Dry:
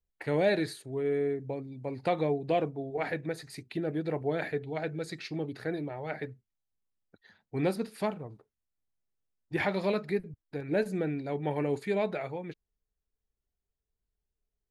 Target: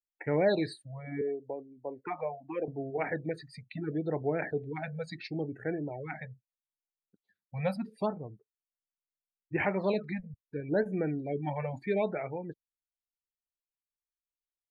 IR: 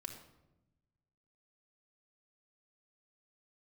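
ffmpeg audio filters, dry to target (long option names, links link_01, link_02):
-filter_complex "[0:a]asettb=1/sr,asplit=3[link_01][link_02][link_03];[link_01]atrim=end=1.214[link_04];[link_02]atrim=start=1.21:end=2.68,asetpts=PTS-STARTPTS,afade=type=in:duration=0.004:curve=qsin,afade=type=out:start_time=1.466:duration=0.004:curve=qsin,acrossover=split=320 2300:gain=0.141 1 0.0631[link_05][link_06][link_07];[link_05][link_06][link_07]amix=inputs=3:normalize=0[link_08];[link_03]atrim=start=2.676[link_09];[link_04][link_08]acrossfade=duration=0.004:curve1=hsin:curve2=qsin[link_10];[link_10][link_09]acrossfade=duration=0.004:curve1=qsin:curve2=hsin,afftdn=noise_reduction=26:noise_floor=-44,afftfilt=real='re*(1-between(b*sr/1024,310*pow(4400/310,0.5+0.5*sin(2*PI*0.75*pts/sr))/1.41,310*pow(4400/310,0.5+0.5*sin(2*PI*0.75*pts/sr))*1.41))':imag='im*(1-between(b*sr/1024,310*pow(4400/310,0.5+0.5*sin(2*PI*0.75*pts/sr))/1.41,310*pow(4400/310,0.5+0.5*sin(2*PI*0.75*pts/sr))*1.41))':win_size=1024:overlap=0.75"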